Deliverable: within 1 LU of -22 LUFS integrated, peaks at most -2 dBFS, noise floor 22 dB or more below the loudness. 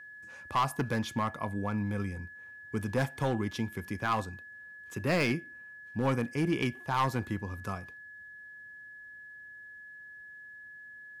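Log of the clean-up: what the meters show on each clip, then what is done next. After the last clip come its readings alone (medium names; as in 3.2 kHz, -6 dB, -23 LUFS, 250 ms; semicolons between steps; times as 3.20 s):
clipped samples 0.9%; clipping level -22.0 dBFS; steady tone 1.7 kHz; tone level -46 dBFS; loudness -32.5 LUFS; peak level -22.0 dBFS; loudness target -22.0 LUFS
-> clip repair -22 dBFS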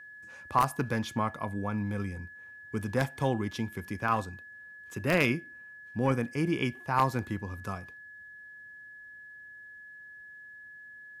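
clipped samples 0.0%; steady tone 1.7 kHz; tone level -46 dBFS
-> band-stop 1.7 kHz, Q 30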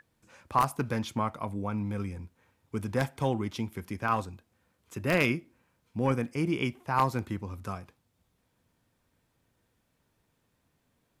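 steady tone not found; loudness -31.0 LUFS; peak level -12.5 dBFS; loudness target -22.0 LUFS
-> trim +9 dB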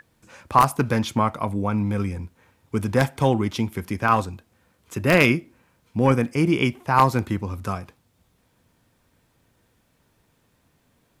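loudness -22.5 LUFS; peak level -3.5 dBFS; noise floor -66 dBFS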